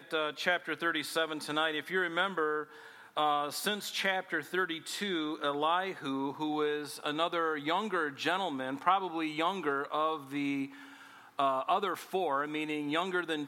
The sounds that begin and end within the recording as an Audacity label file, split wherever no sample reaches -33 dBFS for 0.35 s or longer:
3.170000	10.650000	sound